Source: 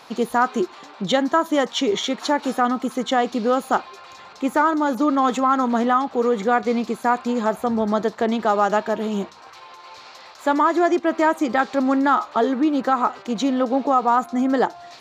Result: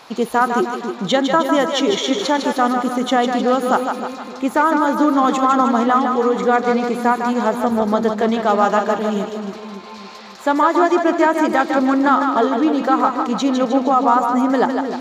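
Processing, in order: split-band echo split 450 Hz, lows 0.282 s, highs 0.154 s, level -5.5 dB; gain +2.5 dB

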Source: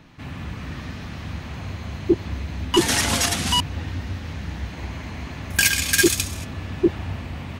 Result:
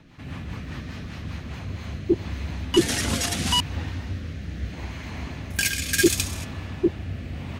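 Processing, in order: rotary speaker horn 5 Hz, later 0.75 Hz, at 1.37

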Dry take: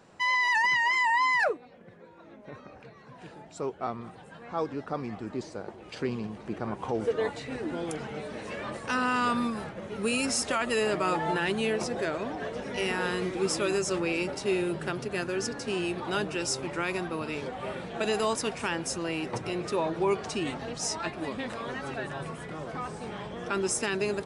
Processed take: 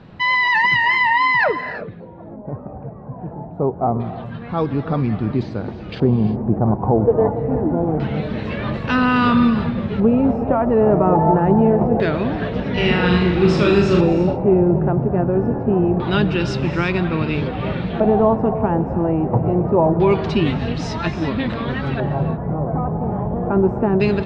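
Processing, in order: LFO low-pass square 0.25 Hz 780–4000 Hz; tone controls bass +15 dB, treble -13 dB; 12.74–14.01 flutter echo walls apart 6.8 m, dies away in 0.59 s; non-linear reverb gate 0.38 s rising, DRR 11 dB; gain +7.5 dB

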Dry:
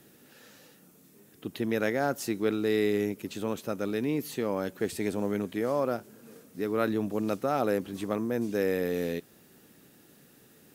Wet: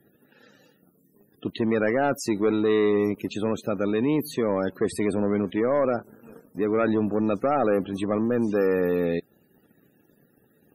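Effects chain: sample leveller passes 2; loudest bins only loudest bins 64

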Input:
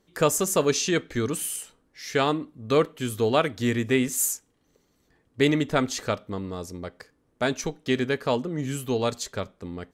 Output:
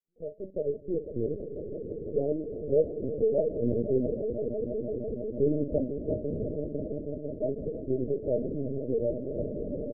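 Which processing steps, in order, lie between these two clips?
opening faded in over 1.13 s; rippled Chebyshev low-pass 630 Hz, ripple 3 dB; low shelf 390 Hz -5 dB; doubler 41 ms -12 dB; swelling echo 0.166 s, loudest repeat 5, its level -12 dB; LPC vocoder at 8 kHz pitch kept

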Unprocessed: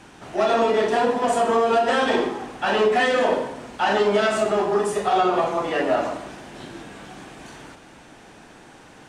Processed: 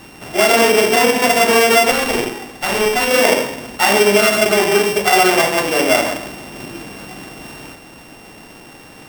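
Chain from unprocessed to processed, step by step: sample sorter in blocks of 16 samples; 1.91–3.11 tube stage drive 15 dB, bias 0.8; gain +7 dB

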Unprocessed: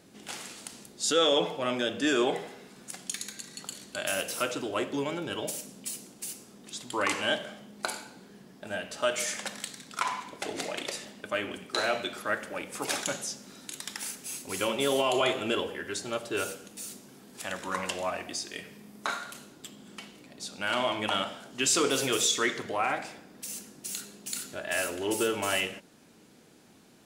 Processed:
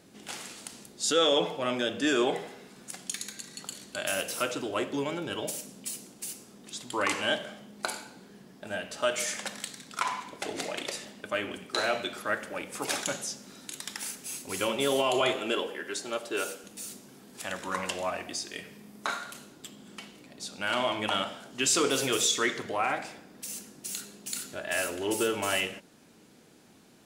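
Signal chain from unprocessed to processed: 15.36–16.64 HPF 240 Hz 12 dB/oct

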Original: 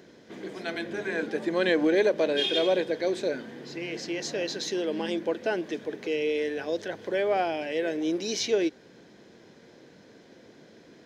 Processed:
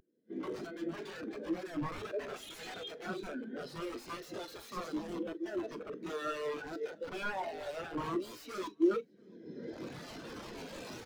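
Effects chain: reverse delay 0.265 s, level -10 dB; recorder AGC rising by 17 dB/s; high shelf 2100 Hz +6.5 dB; compressor 3:1, threshold -27 dBFS, peak gain reduction 8 dB; wrapped overs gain 26.5 dB; doubler 43 ms -11 dB; on a send: echo 0.679 s -15.5 dB; on the sum: spectral expander 2.5:1; gain +5 dB

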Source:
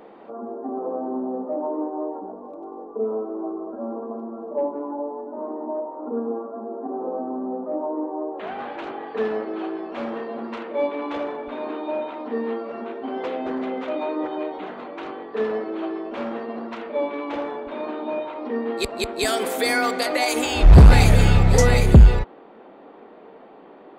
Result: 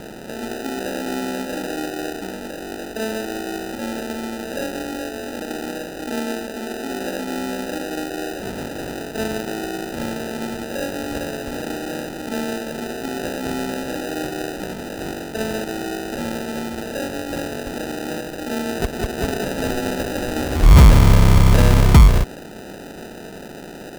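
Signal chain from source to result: per-bin compression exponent 0.6; bell 1300 Hz -12 dB 2 oct; sample-and-hold 40×; gain -1 dB

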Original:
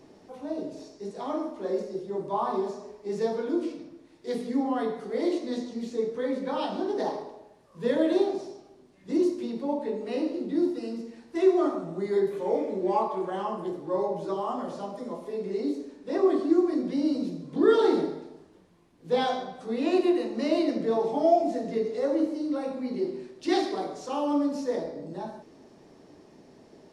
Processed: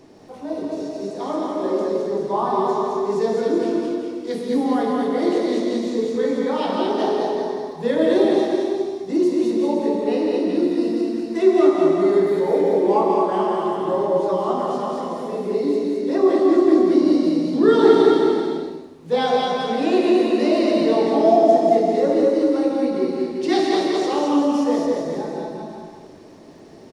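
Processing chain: crackle 29/s -56 dBFS; bouncing-ball echo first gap 0.22 s, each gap 0.75×, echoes 5; non-linear reverb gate 0.23 s rising, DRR 2.5 dB; gain +5 dB

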